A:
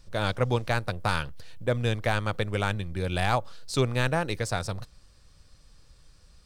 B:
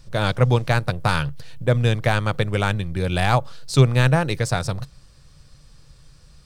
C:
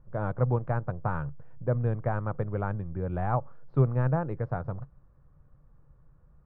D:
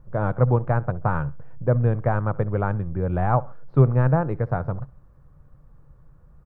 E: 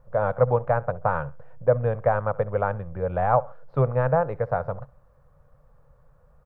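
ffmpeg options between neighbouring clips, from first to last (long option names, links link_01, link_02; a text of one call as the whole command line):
ffmpeg -i in.wav -af "equalizer=frequency=140:width_type=o:width=0.35:gain=11,volume=5.5dB" out.wav
ffmpeg -i in.wav -af "lowpass=frequency=1300:width=0.5412,lowpass=frequency=1300:width=1.3066,volume=-8.5dB" out.wav
ffmpeg -i in.wav -af "aecho=1:1:67|134:0.0794|0.027,volume=7dB" out.wav
ffmpeg -i in.wav -af "lowshelf=frequency=420:width_type=q:width=3:gain=-6.5" out.wav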